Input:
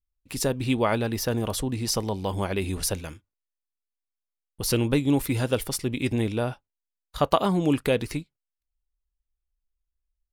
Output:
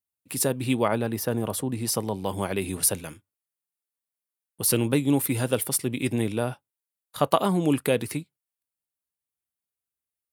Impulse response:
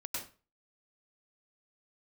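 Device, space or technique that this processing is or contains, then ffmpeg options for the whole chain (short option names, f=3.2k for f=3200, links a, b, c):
budget condenser microphone: -filter_complex "[0:a]highpass=74,highpass=f=98:w=0.5412,highpass=f=98:w=1.3066,highshelf=f=7.7k:t=q:w=1.5:g=6.5,asettb=1/sr,asplit=3[a][b][c];[a]atrim=end=0.884[d];[b]atrim=start=0.88:end=2.26,asetpts=PTS-STARTPTS,afade=t=in:d=0.004:c=qsin,afade=t=out:st=1.376:d=0.004:c=qsin,adynamicequalizer=threshold=0.00794:dfrequency=1900:dqfactor=0.7:tfrequency=1900:tqfactor=0.7:attack=5:release=100:ratio=0.375:range=2.5:mode=cutabove:tftype=highshelf[e];[c]atrim=start=2.256[f];[d][e]acrossfade=d=0.004:c1=hsin:c2=qsin[g];[g][f]acrossfade=d=0.004:c1=qsin:c2=hsin"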